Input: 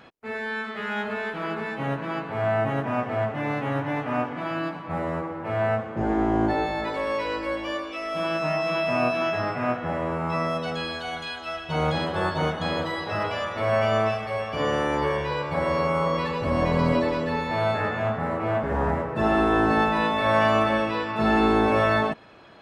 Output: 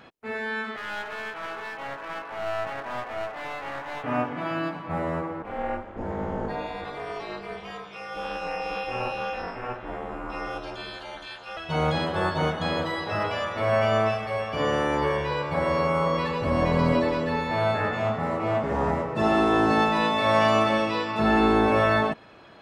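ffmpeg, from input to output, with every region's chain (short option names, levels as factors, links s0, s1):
-filter_complex "[0:a]asettb=1/sr,asplit=3[s0][s1][s2];[s0]atrim=end=0.764[s3];[s1]atrim=start=0.76:end=4.04,asetpts=PTS-STARTPTS,afade=t=in:d=0.004:c=qsin,afade=t=out:st=3.276:d=0.004:c=qsin,highpass=650,lowpass=2900,aeval=exprs='clip(val(0),-1,0.0168)':c=same[s4];[s2]atrim=start=4.036[s5];[s3][s4]acrossfade=d=0.004:c1=hsin:c2=qsin[s6];[s6][s5]acrossfade=d=0.004:c1=qsin:c2=hsin,asettb=1/sr,asplit=3[s7][s8][s9];[s7]atrim=end=5.424[s10];[s8]atrim=start=5.42:end=11.57,asetpts=PTS-STARTPTS,afade=t=in:d=0.004:c=qsin,afade=t=out:st=6.146:d=0.004:c=qsin,asplit=2[s11][s12];[s12]adelay=35,volume=0.237[s13];[s11][s13]amix=inputs=2:normalize=0,atrim=end_sample=271215,flanger=delay=2.8:depth=7.3:regen=-62:speed=1.3:shape=sinusoidal,aeval=exprs='val(0)*sin(2*PI*130*n/s)':c=same[s14];[s9]atrim=start=11.566[s15];[s10][s14]acrossfade=d=0.004:c1=hsin:c2=qsin[s16];[s16][s15]acrossfade=d=0.004:c1=qsin:c2=hsin,asettb=1/sr,asplit=3[s17][s18][s19];[s17]atrim=end=17.934[s20];[s18]atrim=start=17.93:end=21.2,asetpts=PTS-STARTPTS,afade=t=in:d=0.004:c=qsin,afade=t=out:st=3.266:d=0.004:c=qsin,highpass=84,equalizer=f=5700:t=o:w=1.3:g=6.5,bandreject=f=1600:w=6.9[s21];[s19]atrim=start=21.196[s22];[s20][s21]acrossfade=d=0.004:c1=hsin:c2=qsin[s23];[s23][s22]acrossfade=d=0.004:c1=qsin:c2=hsin"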